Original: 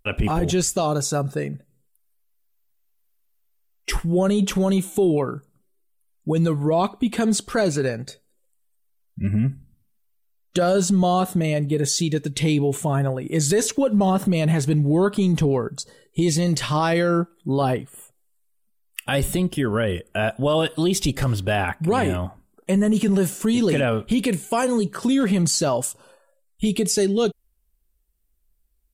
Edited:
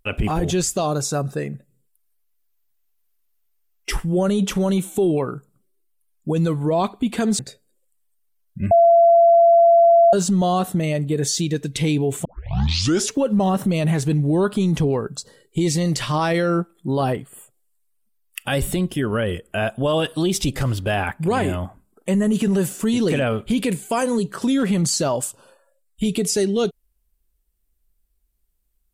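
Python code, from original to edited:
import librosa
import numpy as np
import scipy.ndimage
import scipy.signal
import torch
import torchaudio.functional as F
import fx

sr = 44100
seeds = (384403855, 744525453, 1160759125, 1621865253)

y = fx.edit(x, sr, fx.cut(start_s=7.39, length_s=0.61),
    fx.bleep(start_s=9.32, length_s=1.42, hz=679.0, db=-9.0),
    fx.tape_start(start_s=12.86, length_s=0.86), tone=tone)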